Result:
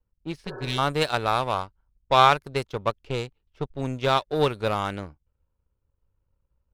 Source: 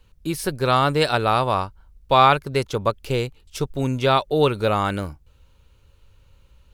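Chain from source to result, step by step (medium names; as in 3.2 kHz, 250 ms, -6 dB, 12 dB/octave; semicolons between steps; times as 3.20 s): level-controlled noise filter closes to 1.1 kHz, open at -16 dBFS; power-law waveshaper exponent 1.4; spectral replace 0.49–0.76 s, 300–1800 Hz before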